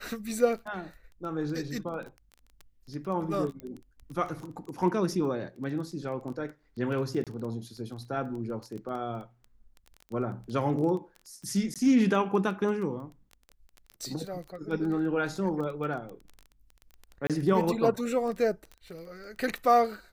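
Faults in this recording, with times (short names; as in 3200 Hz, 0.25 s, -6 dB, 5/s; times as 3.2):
crackle 13/s -35 dBFS
3.6 pop -27 dBFS
7.24–7.27 gap 27 ms
11.74–11.76 gap 17 ms
17.27–17.3 gap 27 ms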